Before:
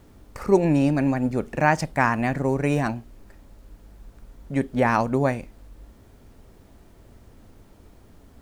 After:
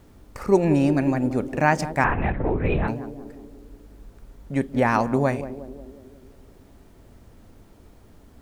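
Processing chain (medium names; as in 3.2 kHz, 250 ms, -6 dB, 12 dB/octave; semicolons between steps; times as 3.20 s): band-passed feedback delay 181 ms, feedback 65%, band-pass 340 Hz, level -10 dB; 2.04–2.88 s: LPC vocoder at 8 kHz whisper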